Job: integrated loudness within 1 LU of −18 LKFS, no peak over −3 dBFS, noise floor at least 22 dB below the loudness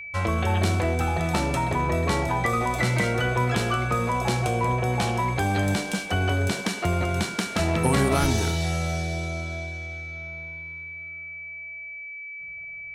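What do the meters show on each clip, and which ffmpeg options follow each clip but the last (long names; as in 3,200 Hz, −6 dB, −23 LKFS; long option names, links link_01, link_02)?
interfering tone 2,300 Hz; level of the tone −35 dBFS; integrated loudness −25.5 LKFS; sample peak −8.0 dBFS; target loudness −18.0 LKFS
→ -af "bandreject=frequency=2300:width=30"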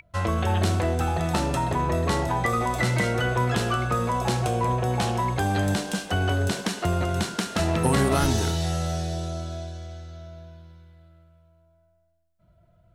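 interfering tone none found; integrated loudness −25.0 LKFS; sample peak −8.0 dBFS; target loudness −18.0 LKFS
→ -af "volume=7dB,alimiter=limit=-3dB:level=0:latency=1"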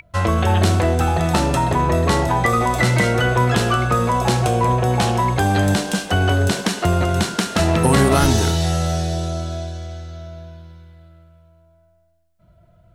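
integrated loudness −18.0 LKFS; sample peak −3.0 dBFS; background noise floor −56 dBFS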